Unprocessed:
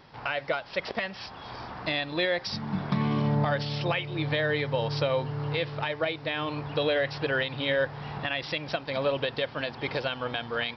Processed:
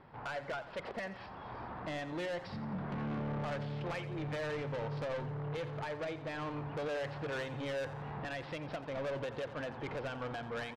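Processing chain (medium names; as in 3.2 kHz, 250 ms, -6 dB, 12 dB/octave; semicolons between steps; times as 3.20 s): low-pass 1.7 kHz 12 dB/octave; saturation -32 dBFS, distortion -7 dB; feedback delay 87 ms, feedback 48%, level -14 dB; trim -3 dB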